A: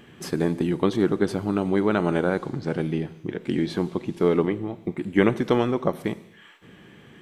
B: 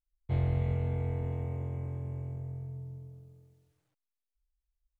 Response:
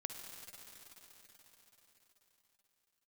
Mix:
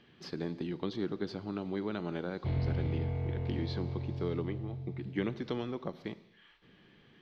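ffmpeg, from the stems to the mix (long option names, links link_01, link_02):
-filter_complex "[0:a]volume=-13dB[link_01];[1:a]asoftclip=type=tanh:threshold=-25dB,adelay=2150,volume=-2.5dB,asplit=2[link_02][link_03];[link_03]volume=-9dB[link_04];[2:a]atrim=start_sample=2205[link_05];[link_04][link_05]afir=irnorm=-1:irlink=0[link_06];[link_01][link_02][link_06]amix=inputs=3:normalize=0,acrossover=split=370|3000[link_07][link_08][link_09];[link_08]acompressor=threshold=-38dB:ratio=6[link_10];[link_07][link_10][link_09]amix=inputs=3:normalize=0,highshelf=frequency=6600:width_type=q:width=3:gain=-14"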